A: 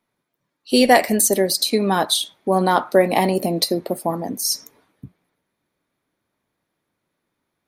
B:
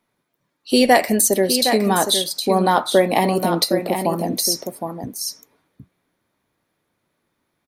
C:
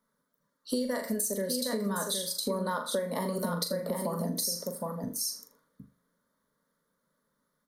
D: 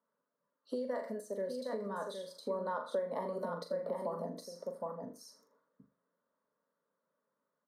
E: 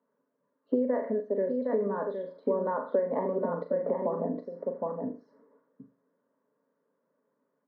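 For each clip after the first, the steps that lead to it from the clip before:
delay 763 ms -8.5 dB; in parallel at -1 dB: compression, threshold -23 dBFS, peak gain reduction 14 dB; on the sum: trim -2 dB
static phaser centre 510 Hz, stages 8; flutter echo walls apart 6.9 m, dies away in 0.3 s; compression 8:1, threshold -25 dBFS, peak gain reduction 15.5 dB; trim -3 dB
band-pass filter 670 Hz, Q 0.97; trim -2.5 dB
cabinet simulation 120–2000 Hz, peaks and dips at 130 Hz +6 dB, 270 Hz +9 dB, 420 Hz +6 dB, 1.3 kHz -7 dB; trim +6.5 dB

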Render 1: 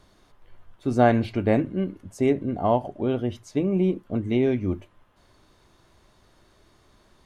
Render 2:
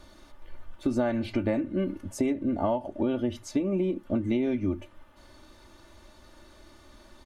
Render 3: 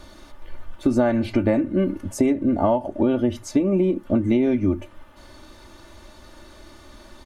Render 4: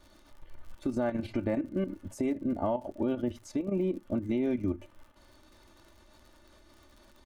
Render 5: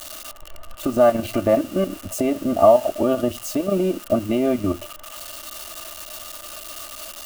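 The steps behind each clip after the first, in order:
comb 3.4 ms, depth 69%; compression 10:1, threshold -27 dBFS, peak gain reduction 16 dB; trim +3.5 dB
dynamic bell 3.4 kHz, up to -4 dB, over -54 dBFS, Q 1; trim +7.5 dB
level held to a coarse grid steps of 10 dB; crackle 52 per s -39 dBFS; trim -8 dB
zero-crossing glitches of -32.5 dBFS; small resonant body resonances 660/1200/2800 Hz, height 15 dB, ringing for 25 ms; trim +7 dB

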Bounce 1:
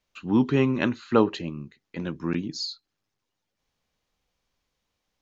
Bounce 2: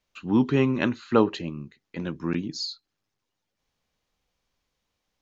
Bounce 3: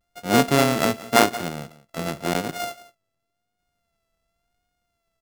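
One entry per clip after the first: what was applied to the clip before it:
no audible change
sorted samples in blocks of 64 samples; vibrato 0.91 Hz 58 cents; delay 178 ms -18.5 dB; trim +3 dB

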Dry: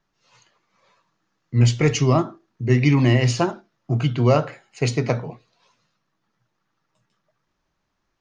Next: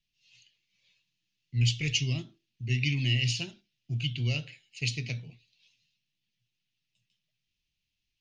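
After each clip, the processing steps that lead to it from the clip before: FFT filter 110 Hz 0 dB, 1.2 kHz -28 dB, 2.7 kHz +11 dB, 7.5 kHz +1 dB; trim -8.5 dB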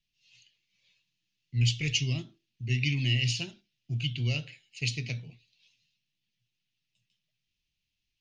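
no audible change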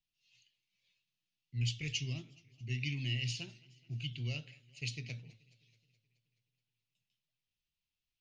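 modulated delay 213 ms, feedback 61%, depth 130 cents, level -24 dB; trim -9 dB

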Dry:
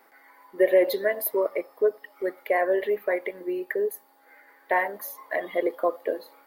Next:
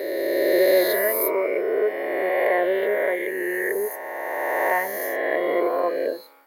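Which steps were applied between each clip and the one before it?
reverse spectral sustain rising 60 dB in 3.00 s; trim -1.5 dB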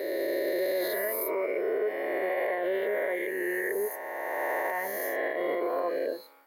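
peak limiter -16.5 dBFS, peak gain reduction 8.5 dB; trim -4.5 dB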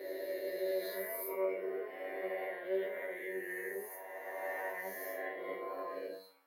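feedback comb 95 Hz, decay 0.34 s, harmonics all, mix 100%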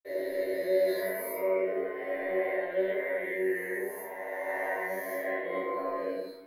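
reverberation RT60 0.70 s, pre-delay 47 ms; trim +7.5 dB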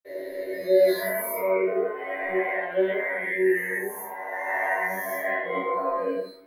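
spectral noise reduction 10 dB; trim +8.5 dB

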